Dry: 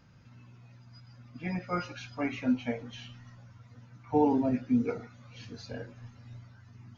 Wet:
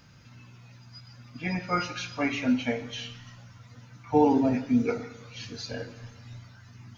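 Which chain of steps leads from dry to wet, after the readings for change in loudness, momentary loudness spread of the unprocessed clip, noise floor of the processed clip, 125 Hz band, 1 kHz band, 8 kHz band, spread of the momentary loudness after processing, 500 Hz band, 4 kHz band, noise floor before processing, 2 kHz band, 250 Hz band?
+3.5 dB, 23 LU, -53 dBFS, +3.0 dB, +5.0 dB, n/a, 23 LU, +4.5 dB, +10.0 dB, -56 dBFS, +7.5 dB, +3.5 dB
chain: high shelf 2100 Hz +9 dB; non-linear reverb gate 0.41 s falling, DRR 11.5 dB; gain +3 dB

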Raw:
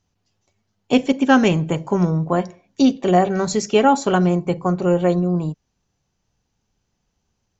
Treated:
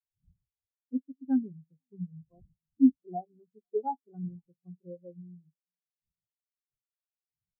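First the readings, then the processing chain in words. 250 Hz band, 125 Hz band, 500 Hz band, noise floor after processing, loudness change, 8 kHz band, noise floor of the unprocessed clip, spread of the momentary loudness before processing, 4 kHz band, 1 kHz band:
-12.5 dB, -24.0 dB, -22.0 dB, under -85 dBFS, -13.0 dB, n/a, -73 dBFS, 7 LU, under -40 dB, -19.5 dB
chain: wind noise 180 Hz -30 dBFS; feedback echo 0.495 s, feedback 59%, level -17.5 dB; spectral expander 4:1; gain -8.5 dB

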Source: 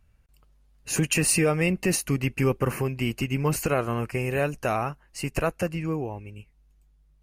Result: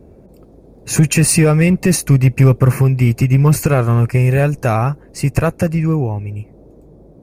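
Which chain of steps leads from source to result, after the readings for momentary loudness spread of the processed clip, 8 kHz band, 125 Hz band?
9 LU, +8.0 dB, +17.0 dB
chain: bell 120 Hz +11 dB 1.2 oct; notch 2900 Hz, Q 5.6; in parallel at -4.5 dB: hard clip -16 dBFS, distortion -12 dB; on the sum: band noise 45–510 Hz -48 dBFS; gain +4 dB

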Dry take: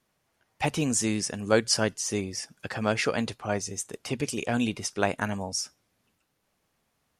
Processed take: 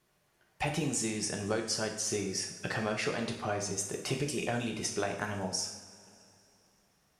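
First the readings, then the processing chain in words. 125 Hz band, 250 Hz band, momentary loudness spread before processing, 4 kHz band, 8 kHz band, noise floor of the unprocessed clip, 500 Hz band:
-4.5 dB, -6.5 dB, 9 LU, -4.5 dB, -3.5 dB, -76 dBFS, -5.5 dB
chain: compressor, threshold -31 dBFS, peak gain reduction 14 dB; two-slope reverb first 0.64 s, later 3.1 s, from -18 dB, DRR 1.5 dB

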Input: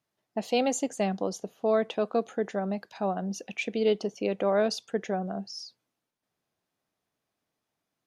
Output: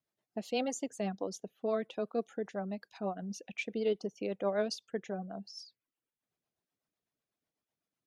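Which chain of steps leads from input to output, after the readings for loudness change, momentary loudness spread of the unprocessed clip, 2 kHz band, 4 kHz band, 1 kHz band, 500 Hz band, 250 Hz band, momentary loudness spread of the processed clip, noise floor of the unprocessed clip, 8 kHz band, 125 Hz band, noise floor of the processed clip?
-7.5 dB, 9 LU, -6.5 dB, -7.0 dB, -9.0 dB, -7.5 dB, -7.0 dB, 10 LU, -85 dBFS, -7.5 dB, n/a, under -85 dBFS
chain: reverb removal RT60 0.63 s; rotary speaker horn 8 Hz; gain -4.5 dB

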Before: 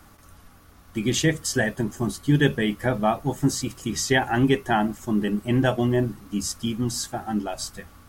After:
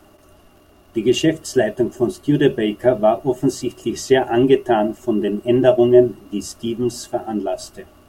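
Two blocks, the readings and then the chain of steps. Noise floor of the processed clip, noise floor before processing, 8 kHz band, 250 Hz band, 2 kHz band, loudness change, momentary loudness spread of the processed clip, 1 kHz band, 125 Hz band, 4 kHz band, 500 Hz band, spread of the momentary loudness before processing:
-51 dBFS, -52 dBFS, -3.0 dB, +5.0 dB, -2.0 dB, +6.0 dB, 12 LU, +3.5 dB, -1.5 dB, +0.5 dB, +11.0 dB, 8 LU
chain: crackle 91/s -44 dBFS; small resonant body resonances 370/610/2800 Hz, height 17 dB, ringing for 40 ms; gain -3 dB

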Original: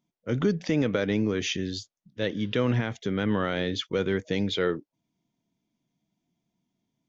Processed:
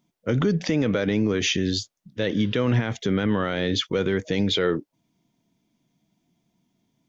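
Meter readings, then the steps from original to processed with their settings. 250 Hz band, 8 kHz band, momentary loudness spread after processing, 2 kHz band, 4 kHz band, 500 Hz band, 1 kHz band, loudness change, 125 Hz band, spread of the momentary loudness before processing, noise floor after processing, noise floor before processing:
+4.0 dB, n/a, 5 LU, +3.5 dB, +6.0 dB, +3.0 dB, +3.0 dB, +4.0 dB, +4.5 dB, 7 LU, -76 dBFS, -85 dBFS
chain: limiter -22 dBFS, peak gain reduction 7.5 dB; gain +8.5 dB

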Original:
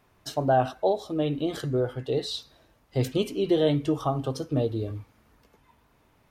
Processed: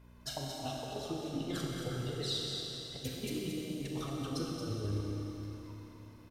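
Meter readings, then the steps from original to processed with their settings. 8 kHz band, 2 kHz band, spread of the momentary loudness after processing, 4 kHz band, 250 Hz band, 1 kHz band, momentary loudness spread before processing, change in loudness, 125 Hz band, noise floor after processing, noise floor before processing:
0.0 dB, -7.5 dB, 9 LU, -2.0 dB, -10.0 dB, -15.5 dB, 10 LU, -11.0 dB, -8.5 dB, -55 dBFS, -64 dBFS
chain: envelope flanger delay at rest 2 ms, full sweep at -20.5 dBFS; in parallel at -8.5 dB: soft clip -30 dBFS, distortion -6 dB; on the sum: negative-ratio compressor -31 dBFS, ratio -0.5; hum 60 Hz, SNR 15 dB; on a send: echo 0.226 s -7.5 dB; on the sum: Schroeder reverb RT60 3.7 s, combs from 29 ms, DRR -1.5 dB; gain -9 dB

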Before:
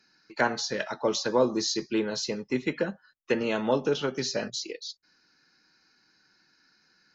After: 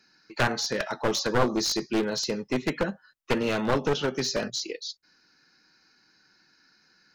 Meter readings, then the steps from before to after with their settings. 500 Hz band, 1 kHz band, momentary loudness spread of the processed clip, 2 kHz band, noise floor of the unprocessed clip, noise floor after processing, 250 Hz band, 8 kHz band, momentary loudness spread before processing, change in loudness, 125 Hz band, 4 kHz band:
-0.5 dB, +2.0 dB, 10 LU, +2.0 dB, -67 dBFS, -64 dBFS, +1.0 dB, n/a, 9 LU, +1.0 dB, +5.5 dB, +2.5 dB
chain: one-sided fold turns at -24 dBFS; gain +2.5 dB

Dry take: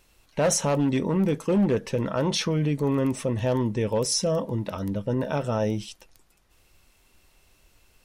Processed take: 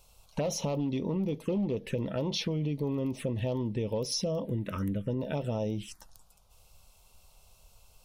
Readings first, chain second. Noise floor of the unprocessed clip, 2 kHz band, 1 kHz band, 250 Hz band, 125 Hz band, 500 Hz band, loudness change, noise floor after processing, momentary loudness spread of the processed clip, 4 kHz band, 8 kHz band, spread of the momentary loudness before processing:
-63 dBFS, -9.5 dB, -10.5 dB, -6.5 dB, -5.5 dB, -7.5 dB, -7.0 dB, -62 dBFS, 3 LU, -6.0 dB, -11.0 dB, 7 LU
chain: envelope phaser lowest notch 300 Hz, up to 1600 Hz, full sweep at -21.5 dBFS; compressor, threshold -31 dBFS, peak gain reduction 11.5 dB; gain +2.5 dB

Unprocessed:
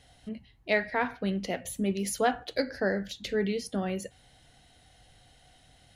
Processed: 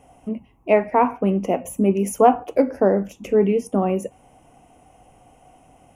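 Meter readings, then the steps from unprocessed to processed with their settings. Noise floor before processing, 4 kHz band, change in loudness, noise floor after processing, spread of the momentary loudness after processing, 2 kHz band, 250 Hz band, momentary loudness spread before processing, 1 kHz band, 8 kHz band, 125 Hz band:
-60 dBFS, n/a, +10.5 dB, -55 dBFS, 15 LU, -2.0 dB, +10.5 dB, 14 LU, +13.0 dB, +2.5 dB, +9.5 dB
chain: EQ curve 110 Hz 0 dB, 270 Hz +11 dB, 590 Hz +9 dB, 1100 Hz +13 dB, 1700 Hz -10 dB, 2600 Hz +4 dB, 4100 Hz -28 dB, 5800 Hz -3 dB, 13000 Hz +3 dB; gain +2.5 dB

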